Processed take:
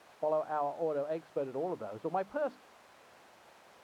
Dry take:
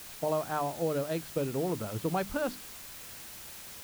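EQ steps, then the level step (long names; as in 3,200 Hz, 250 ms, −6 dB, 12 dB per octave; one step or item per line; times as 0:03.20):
resonant band-pass 700 Hz, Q 1.1
0.0 dB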